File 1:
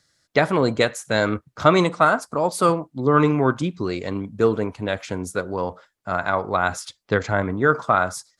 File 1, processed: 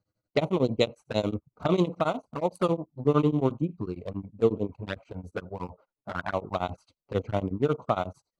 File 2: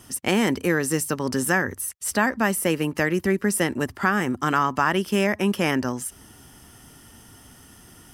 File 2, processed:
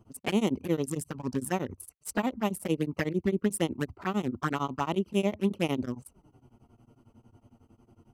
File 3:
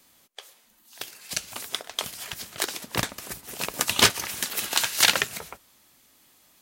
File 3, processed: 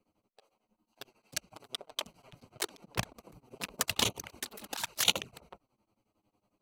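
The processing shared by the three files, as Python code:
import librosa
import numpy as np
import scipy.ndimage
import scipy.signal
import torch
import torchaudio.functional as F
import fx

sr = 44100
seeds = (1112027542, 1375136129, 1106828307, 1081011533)

y = fx.wiener(x, sr, points=25)
y = fx.env_flanger(y, sr, rest_ms=9.8, full_db=-18.5)
y = y * np.abs(np.cos(np.pi * 11.0 * np.arange(len(y)) / sr))
y = F.gain(torch.from_numpy(y), -1.5).numpy()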